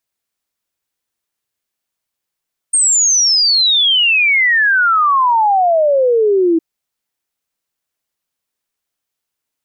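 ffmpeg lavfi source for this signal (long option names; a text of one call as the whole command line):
ffmpeg -f lavfi -i "aevalsrc='0.355*clip(min(t,3.86-t)/0.01,0,1)*sin(2*PI*8700*3.86/log(320/8700)*(exp(log(320/8700)*t/3.86)-1))':duration=3.86:sample_rate=44100" out.wav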